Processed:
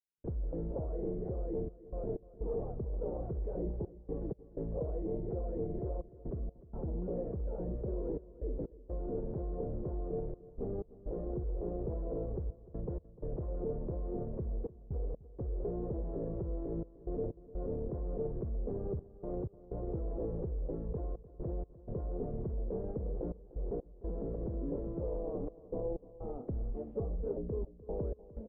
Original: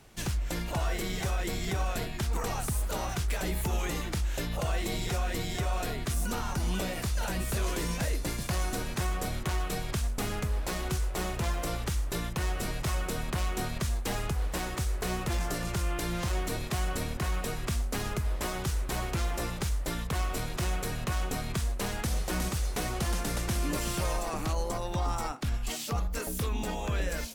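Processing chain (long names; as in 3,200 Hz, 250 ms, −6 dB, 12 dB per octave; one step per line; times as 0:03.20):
brickwall limiter −31 dBFS, peak gain reduction 10 dB
gate pattern ".xxxxxx.x" 65 BPM −60 dB
transistor ladder low-pass 550 Hz, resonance 60%
on a send: repeating echo 288 ms, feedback 42%, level −18 dB
on the sum: wrong playback speed 25 fps video run at 24 fps
highs frequency-modulated by the lows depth 0.13 ms
level +11.5 dB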